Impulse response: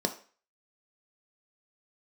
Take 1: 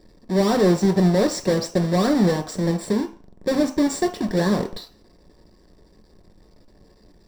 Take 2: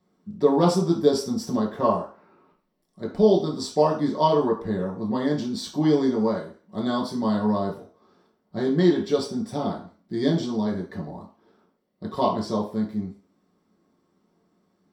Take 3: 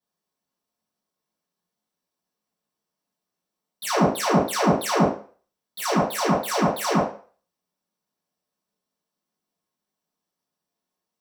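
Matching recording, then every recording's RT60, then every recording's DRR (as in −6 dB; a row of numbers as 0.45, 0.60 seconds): 1; 0.40, 0.40, 0.40 seconds; 5.0, −4.0, −12.5 decibels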